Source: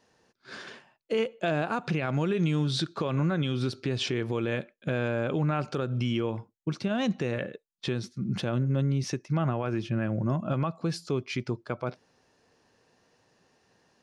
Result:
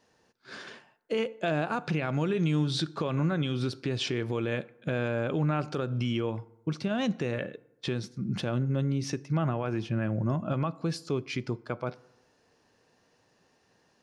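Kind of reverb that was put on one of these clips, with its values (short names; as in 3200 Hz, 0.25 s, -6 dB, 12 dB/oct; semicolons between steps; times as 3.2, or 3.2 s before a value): FDN reverb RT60 0.99 s, low-frequency decay 0.9×, high-frequency decay 0.5×, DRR 19 dB; gain -1 dB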